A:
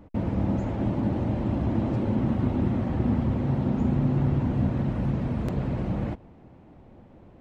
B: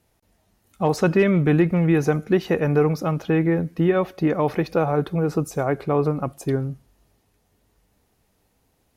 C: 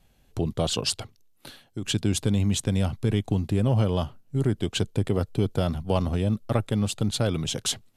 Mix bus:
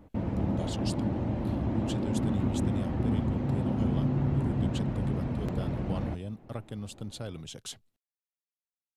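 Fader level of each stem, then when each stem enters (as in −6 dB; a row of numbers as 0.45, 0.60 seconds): −4.0 dB, muted, −14.0 dB; 0.00 s, muted, 0.00 s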